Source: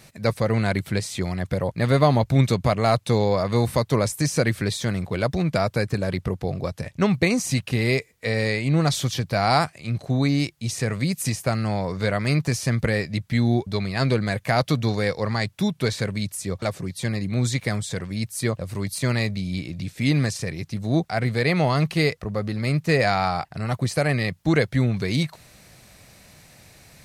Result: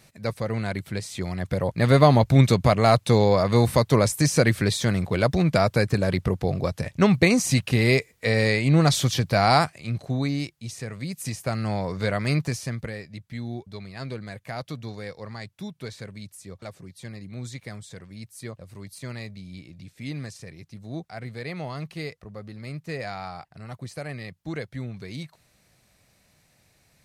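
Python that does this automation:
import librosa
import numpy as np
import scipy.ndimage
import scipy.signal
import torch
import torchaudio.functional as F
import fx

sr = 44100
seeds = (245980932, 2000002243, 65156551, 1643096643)

y = fx.gain(x, sr, db=fx.line((0.94, -6.0), (1.92, 2.0), (9.4, 2.0), (10.91, -10.0), (11.71, -2.0), (12.38, -2.0), (12.98, -13.0)))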